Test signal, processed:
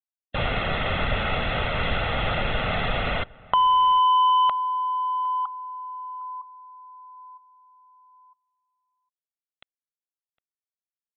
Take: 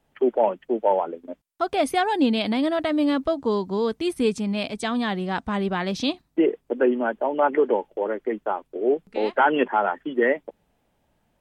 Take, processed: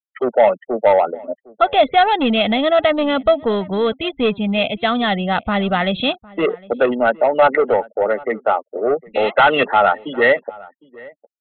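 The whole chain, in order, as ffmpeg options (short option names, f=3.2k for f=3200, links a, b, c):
-filter_complex "[0:a]aemphasis=mode=production:type=75kf,afftfilt=real='re*gte(hypot(re,im),0.0158)':imag='im*gte(hypot(re,im),0.0158)':win_size=1024:overlap=0.75,acrossover=split=2900[a][b];[b]acompressor=threshold=-30dB:ratio=4:attack=1:release=60[c];[a][c]amix=inputs=2:normalize=0,aresample=8000,asoftclip=type=tanh:threshold=-16dB,aresample=44100,lowshelf=f=190:g=-3.5,aecho=1:1:1.5:0.59,asplit=2[d][e];[e]adelay=758,volume=-22dB,highshelf=f=4k:g=-17.1[f];[d][f]amix=inputs=2:normalize=0,volume=8.5dB"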